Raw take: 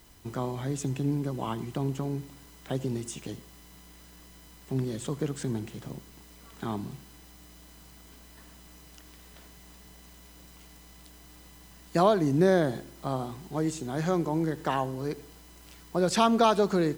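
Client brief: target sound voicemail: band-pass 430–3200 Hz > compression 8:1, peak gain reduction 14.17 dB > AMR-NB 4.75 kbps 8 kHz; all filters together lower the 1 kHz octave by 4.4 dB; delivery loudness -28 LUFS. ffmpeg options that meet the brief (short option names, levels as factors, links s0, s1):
-af "highpass=430,lowpass=3200,equalizer=f=1000:t=o:g=-5.5,acompressor=threshold=0.0178:ratio=8,volume=5.96" -ar 8000 -c:a libopencore_amrnb -b:a 4750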